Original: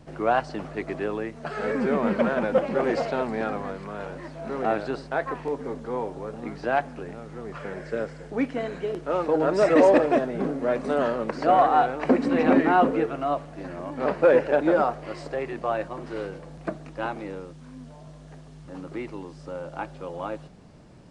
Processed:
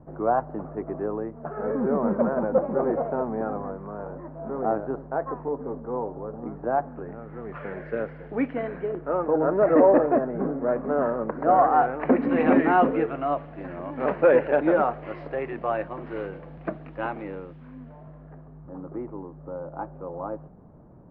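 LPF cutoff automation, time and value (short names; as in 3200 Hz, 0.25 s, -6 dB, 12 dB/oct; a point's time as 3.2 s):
LPF 24 dB/oct
6.77 s 1200 Hz
7.63 s 2500 Hz
8.51 s 2500 Hz
9.25 s 1500 Hz
11.41 s 1500 Hz
12.4 s 2700 Hz
17.56 s 2700 Hz
18.7 s 1200 Hz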